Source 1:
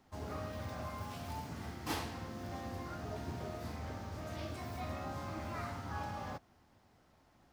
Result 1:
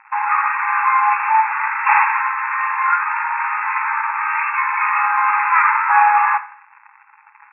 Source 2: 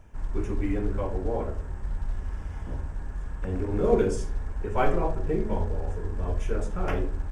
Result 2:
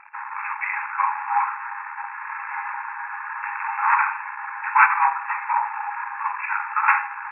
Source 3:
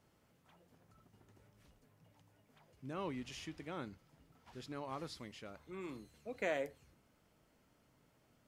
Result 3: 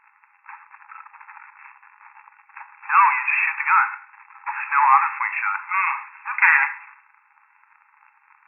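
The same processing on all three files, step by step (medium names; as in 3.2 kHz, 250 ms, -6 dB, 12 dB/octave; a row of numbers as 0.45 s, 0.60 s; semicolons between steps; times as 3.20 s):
waveshaping leveller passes 1; in parallel at -2 dB: compression, threshold -33 dBFS; on the sum: waveshaping leveller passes 2; FFT band-pass 800–2700 Hz; Schroeder reverb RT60 0.53 s, combs from 31 ms, DRR 12 dB; peak normalisation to -1.5 dBFS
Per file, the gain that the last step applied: +18.0 dB, +8.0 dB, +19.5 dB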